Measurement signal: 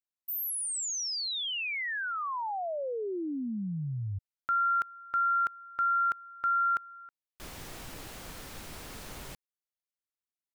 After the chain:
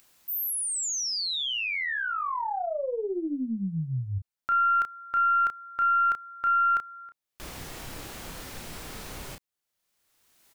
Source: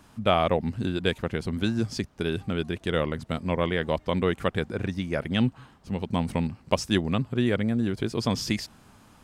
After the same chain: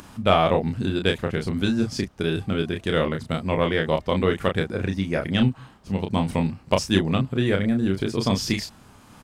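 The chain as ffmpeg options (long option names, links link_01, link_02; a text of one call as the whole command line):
ffmpeg -i in.wav -filter_complex "[0:a]asplit=2[link_01][link_02];[link_02]adelay=31,volume=-5dB[link_03];[link_01][link_03]amix=inputs=2:normalize=0,acompressor=mode=upward:threshold=-38dB:ratio=2.5:attack=2.7:release=697:knee=2.83:detection=peak,aeval=exprs='0.631*(cos(1*acos(clip(val(0)/0.631,-1,1)))-cos(1*PI/2))+0.0158*(cos(6*acos(clip(val(0)/0.631,-1,1)))-cos(6*PI/2))':channel_layout=same,volume=2.5dB" out.wav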